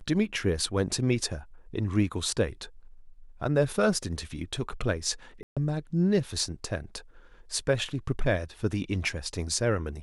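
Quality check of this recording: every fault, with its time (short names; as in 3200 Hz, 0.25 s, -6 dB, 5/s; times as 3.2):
5.43–5.57 gap 0.136 s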